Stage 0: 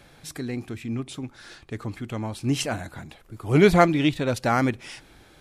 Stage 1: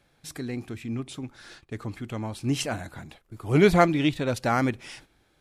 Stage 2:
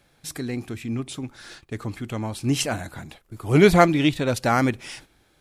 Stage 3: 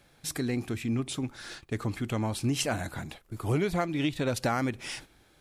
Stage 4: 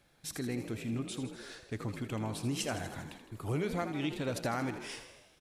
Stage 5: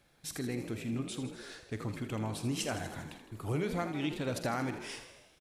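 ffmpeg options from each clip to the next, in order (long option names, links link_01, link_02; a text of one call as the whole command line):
ffmpeg -i in.wav -af "agate=range=-11dB:threshold=-47dB:ratio=16:detection=peak,volume=-2dB" out.wav
ffmpeg -i in.wav -af "highshelf=frequency=5900:gain=4.5,volume=3.5dB" out.wav
ffmpeg -i in.wav -af "acompressor=threshold=-24dB:ratio=16" out.wav
ffmpeg -i in.wav -filter_complex "[0:a]asplit=9[link_01][link_02][link_03][link_04][link_05][link_06][link_07][link_08][link_09];[link_02]adelay=80,afreqshift=48,volume=-10.5dB[link_10];[link_03]adelay=160,afreqshift=96,volume=-14.4dB[link_11];[link_04]adelay=240,afreqshift=144,volume=-18.3dB[link_12];[link_05]adelay=320,afreqshift=192,volume=-22.1dB[link_13];[link_06]adelay=400,afreqshift=240,volume=-26dB[link_14];[link_07]adelay=480,afreqshift=288,volume=-29.9dB[link_15];[link_08]adelay=560,afreqshift=336,volume=-33.8dB[link_16];[link_09]adelay=640,afreqshift=384,volume=-37.6dB[link_17];[link_01][link_10][link_11][link_12][link_13][link_14][link_15][link_16][link_17]amix=inputs=9:normalize=0,volume=-6.5dB" out.wav
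ffmpeg -i in.wav -filter_complex "[0:a]asplit=2[link_01][link_02];[link_02]adelay=47,volume=-14dB[link_03];[link_01][link_03]amix=inputs=2:normalize=0" out.wav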